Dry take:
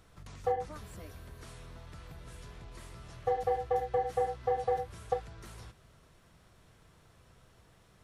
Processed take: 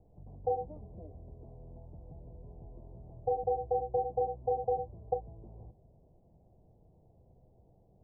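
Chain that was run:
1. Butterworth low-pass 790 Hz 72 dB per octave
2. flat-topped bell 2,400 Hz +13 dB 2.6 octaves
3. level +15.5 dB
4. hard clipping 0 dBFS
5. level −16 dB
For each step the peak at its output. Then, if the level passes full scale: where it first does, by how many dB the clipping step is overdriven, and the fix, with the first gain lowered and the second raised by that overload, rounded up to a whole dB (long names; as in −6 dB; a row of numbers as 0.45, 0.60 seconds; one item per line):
−18.0, −17.5, −2.0, −2.0, −18.0 dBFS
no step passes full scale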